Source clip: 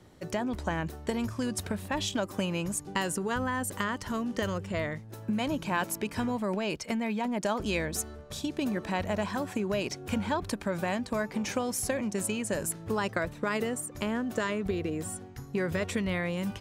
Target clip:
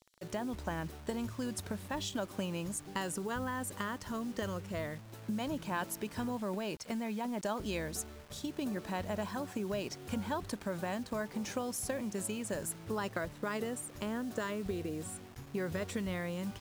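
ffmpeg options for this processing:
ffmpeg -i in.wav -filter_complex "[0:a]equalizer=frequency=2300:width_type=o:width=0.55:gain=-4.5,acrossover=split=3300[link_01][link_02];[link_01]acrusher=bits=7:mix=0:aa=0.000001[link_03];[link_03][link_02]amix=inputs=2:normalize=0,volume=-6dB" out.wav

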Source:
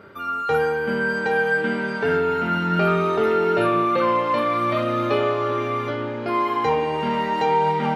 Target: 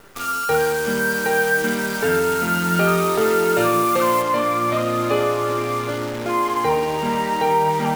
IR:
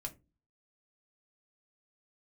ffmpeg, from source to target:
-af "acrusher=bits=6:dc=4:mix=0:aa=0.000001,asetnsamples=nb_out_samples=441:pad=0,asendcmd='4.22 highshelf g -5',highshelf=frequency=4900:gain=5,volume=1.5dB"

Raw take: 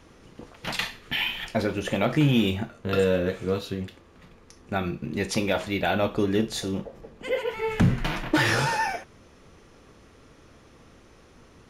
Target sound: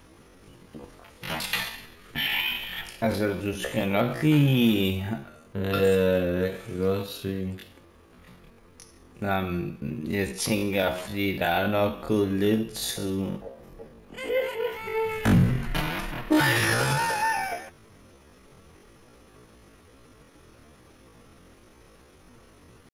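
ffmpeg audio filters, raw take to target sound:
ffmpeg -i in.wav -af "atempo=0.51,aexciter=amount=4.3:drive=2.3:freq=9600" out.wav

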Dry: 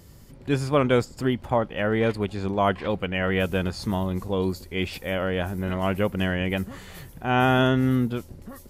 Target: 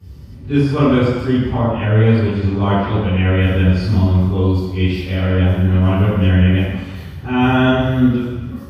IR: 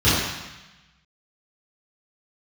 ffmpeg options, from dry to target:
-filter_complex "[1:a]atrim=start_sample=2205,asetrate=40131,aresample=44100[link_01];[0:a][link_01]afir=irnorm=-1:irlink=0,volume=-17.5dB"

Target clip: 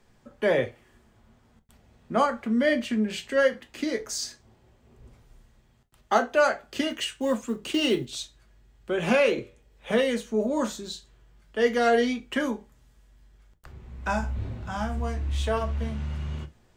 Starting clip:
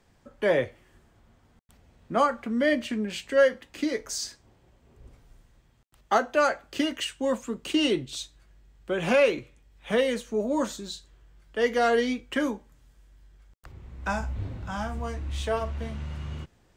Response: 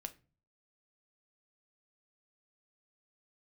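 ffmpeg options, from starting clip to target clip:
-filter_complex "[0:a]asettb=1/sr,asplit=3[link_01][link_02][link_03];[link_01]atrim=end=6.904[link_04];[link_02]atrim=start=6.9:end=8.09,asetpts=PTS-STARTPTS,afade=type=in:duration=0.004:curve=qsin,afade=type=out:start_time=1.186:duration=0.004:curve=qsin,acrusher=bits=8:mode=log:mix=0:aa=0.000001[link_05];[link_03]atrim=start=8.086[link_06];[link_04][link_05]acrossfade=duration=0.004:curve1=hsin:curve2=qsin[link_07];[link_07][link_06]acrossfade=duration=0.004:curve1=qsin:curve2=hsin,asettb=1/sr,asplit=3[link_08][link_09][link_10];[link_08]atrim=end=9.314[link_11];[link_09]atrim=start=9.31:end=9.92,asetpts=PTS-STARTPTS,afade=type=in:duration=0.004:curve=qsin,afade=type=out:start_time=0.606:duration=0.004:curve=qsin,equalizer=frequency=490:width=2.3:gain=9.5[link_12];[link_10]atrim=start=9.916[link_13];[link_11][link_12]acrossfade=duration=0.004:curve1=hsin:curve2=qsin[link_14];[link_14][link_13]acrossfade=duration=0.004:curve1=qsin:curve2=hsin[link_15];[1:a]atrim=start_sample=2205,afade=type=out:start_time=0.15:duration=0.01,atrim=end_sample=7056,asetrate=52920,aresample=44100[link_16];[link_15][link_16]afir=irnorm=-1:irlink=0,volume=6dB"

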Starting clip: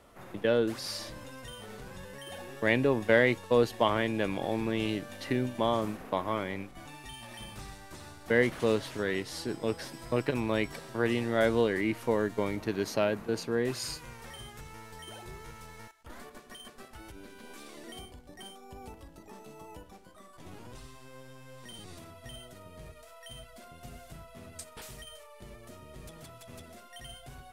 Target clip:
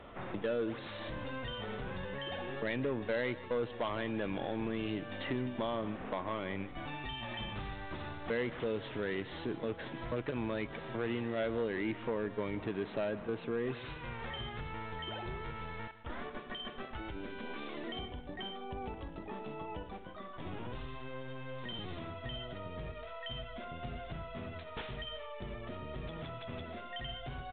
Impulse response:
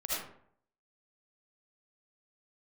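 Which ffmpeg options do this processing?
-af "acompressor=threshold=-45dB:ratio=2,aresample=8000,asoftclip=type=tanh:threshold=-34.5dB,aresample=44100,aecho=1:1:156:0.15,volume=7dB"

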